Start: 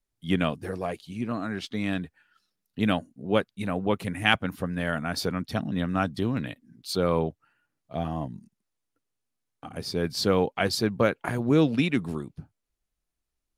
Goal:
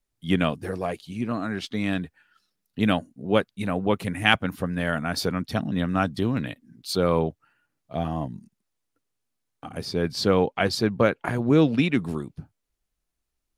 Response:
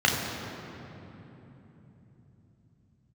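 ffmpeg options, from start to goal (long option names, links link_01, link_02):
-filter_complex "[0:a]asettb=1/sr,asplit=3[link_01][link_02][link_03];[link_01]atrim=end=9.854[link_04];[link_02]atrim=start=9.85:end=12,asetpts=PTS-STARTPTS,afade=type=in:duration=0.004:curve=qsin,afade=type=out:start_time=2.146:duration=0.004:curve=qsin,highshelf=frequency=7400:gain=-8[link_05];[link_03]atrim=start=11.996[link_06];[link_04][link_05]acrossfade=duration=0.004:curve1=hsin:curve2=qsin[link_07];[link_07][link_06]acrossfade=duration=0.004:curve1=qsin:curve2=hsin,volume=2.5dB"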